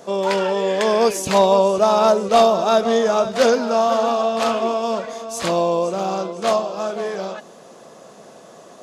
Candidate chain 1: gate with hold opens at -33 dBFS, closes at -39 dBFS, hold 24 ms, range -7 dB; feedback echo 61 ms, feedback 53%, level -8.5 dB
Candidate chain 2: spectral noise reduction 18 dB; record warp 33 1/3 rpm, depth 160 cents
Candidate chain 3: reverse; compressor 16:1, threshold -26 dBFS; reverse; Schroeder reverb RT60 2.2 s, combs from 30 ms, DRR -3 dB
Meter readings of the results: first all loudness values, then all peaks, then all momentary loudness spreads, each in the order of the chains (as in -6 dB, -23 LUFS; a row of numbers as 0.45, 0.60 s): -17.5, -19.5, -25.5 LUFS; -2.5, -4.5, -12.5 dBFS; 10, 13, 10 LU